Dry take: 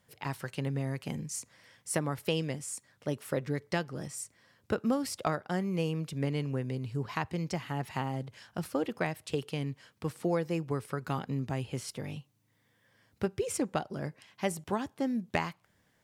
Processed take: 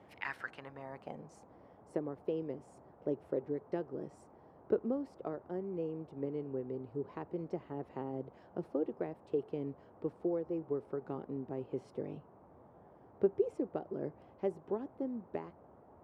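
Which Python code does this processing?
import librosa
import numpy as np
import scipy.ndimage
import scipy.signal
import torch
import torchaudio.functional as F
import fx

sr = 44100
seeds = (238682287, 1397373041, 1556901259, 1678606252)

y = fx.rider(x, sr, range_db=10, speed_s=0.5)
y = fx.filter_sweep_bandpass(y, sr, from_hz=2200.0, to_hz=390.0, start_s=0.11, end_s=1.56, q=2.5)
y = fx.dmg_noise_band(y, sr, seeds[0], low_hz=62.0, high_hz=880.0, level_db=-61.0)
y = F.gain(torch.from_numpy(y), 1.5).numpy()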